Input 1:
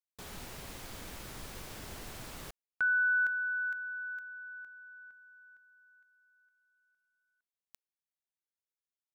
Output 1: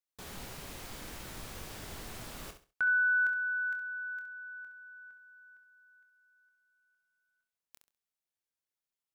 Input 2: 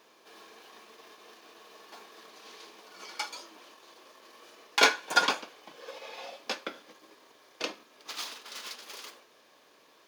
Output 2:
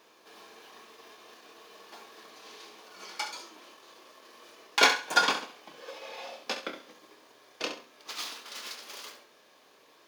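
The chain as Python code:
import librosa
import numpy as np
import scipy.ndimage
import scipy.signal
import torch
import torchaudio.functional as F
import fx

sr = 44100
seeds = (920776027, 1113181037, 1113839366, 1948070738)

y = fx.doubler(x, sr, ms=26.0, db=-10)
y = fx.echo_feedback(y, sr, ms=67, feedback_pct=25, wet_db=-10.0)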